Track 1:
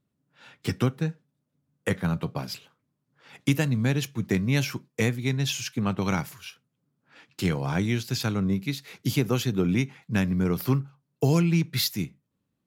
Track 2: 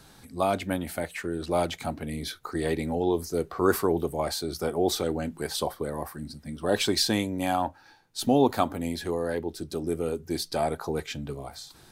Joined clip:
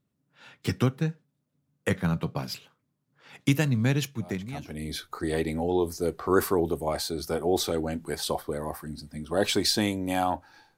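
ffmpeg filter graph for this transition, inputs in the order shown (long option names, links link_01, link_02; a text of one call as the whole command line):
ffmpeg -i cue0.wav -i cue1.wav -filter_complex "[0:a]apad=whole_dur=10.77,atrim=end=10.77,atrim=end=4.89,asetpts=PTS-STARTPTS[link_01];[1:a]atrim=start=1.37:end=8.09,asetpts=PTS-STARTPTS[link_02];[link_01][link_02]acrossfade=duration=0.84:curve1=qua:curve2=qua" out.wav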